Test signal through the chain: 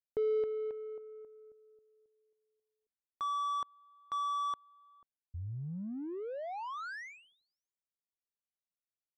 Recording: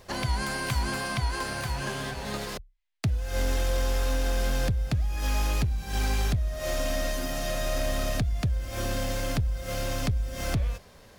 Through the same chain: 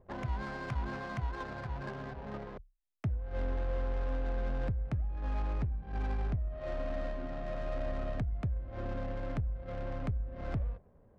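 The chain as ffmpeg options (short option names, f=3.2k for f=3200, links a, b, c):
-af "lowpass=2.2k,adynamicsmooth=sensitivity=4:basefreq=590,volume=-7dB"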